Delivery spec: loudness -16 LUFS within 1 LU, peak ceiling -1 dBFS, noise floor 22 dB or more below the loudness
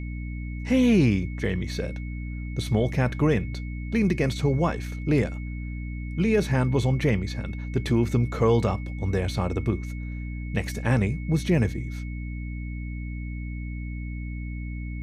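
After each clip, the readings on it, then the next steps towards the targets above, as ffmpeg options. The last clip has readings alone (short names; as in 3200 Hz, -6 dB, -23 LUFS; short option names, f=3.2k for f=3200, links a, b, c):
hum 60 Hz; harmonics up to 300 Hz; hum level -30 dBFS; steady tone 2200 Hz; tone level -45 dBFS; loudness -26.5 LUFS; peak -10.5 dBFS; loudness target -16.0 LUFS
-> -af "bandreject=f=60:t=h:w=4,bandreject=f=120:t=h:w=4,bandreject=f=180:t=h:w=4,bandreject=f=240:t=h:w=4,bandreject=f=300:t=h:w=4"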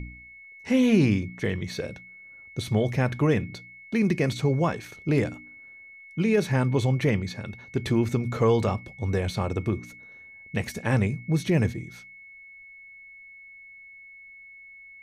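hum none; steady tone 2200 Hz; tone level -45 dBFS
-> -af "bandreject=f=2.2k:w=30"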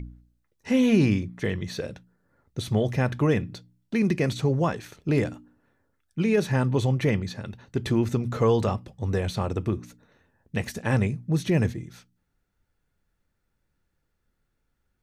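steady tone none; loudness -26.0 LUFS; peak -10.0 dBFS; loudness target -16.0 LUFS
-> -af "volume=10dB,alimiter=limit=-1dB:level=0:latency=1"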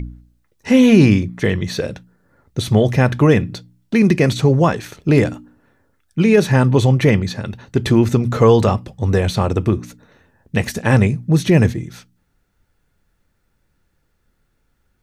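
loudness -16.0 LUFS; peak -1.0 dBFS; noise floor -66 dBFS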